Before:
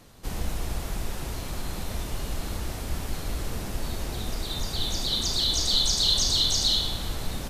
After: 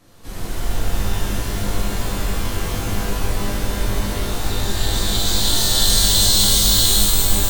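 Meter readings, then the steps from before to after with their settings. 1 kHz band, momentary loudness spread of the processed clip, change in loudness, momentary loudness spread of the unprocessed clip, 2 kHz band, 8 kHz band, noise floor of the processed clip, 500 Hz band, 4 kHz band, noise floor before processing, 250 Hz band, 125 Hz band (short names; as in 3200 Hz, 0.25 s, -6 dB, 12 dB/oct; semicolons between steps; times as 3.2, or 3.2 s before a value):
+10.0 dB, 12 LU, +8.5 dB, 14 LU, +11.5 dB, +11.5 dB, -27 dBFS, +10.0 dB, +6.0 dB, -35 dBFS, +10.5 dB, +10.0 dB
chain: shimmer reverb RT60 3.1 s, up +12 st, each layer -2 dB, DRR -9.5 dB; gain -4.5 dB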